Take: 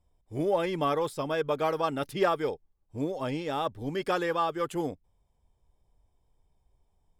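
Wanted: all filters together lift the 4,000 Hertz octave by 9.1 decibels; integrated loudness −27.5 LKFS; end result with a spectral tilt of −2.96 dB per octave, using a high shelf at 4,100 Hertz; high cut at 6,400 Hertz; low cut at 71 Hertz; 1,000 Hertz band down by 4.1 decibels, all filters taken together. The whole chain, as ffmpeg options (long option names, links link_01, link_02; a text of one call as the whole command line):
ffmpeg -i in.wav -af "highpass=71,lowpass=6400,equalizer=frequency=1000:width_type=o:gain=-6.5,equalizer=frequency=4000:width_type=o:gain=8.5,highshelf=frequency=4100:gain=8,volume=3dB" out.wav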